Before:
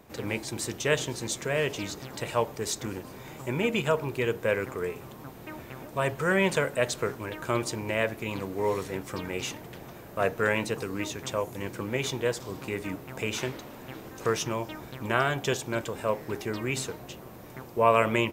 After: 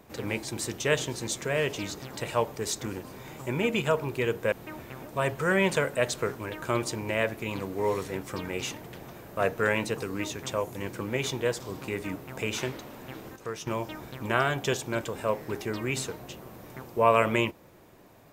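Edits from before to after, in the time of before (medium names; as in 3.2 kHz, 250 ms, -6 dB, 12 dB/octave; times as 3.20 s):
4.52–5.32 s: delete
14.16–14.47 s: gain -9 dB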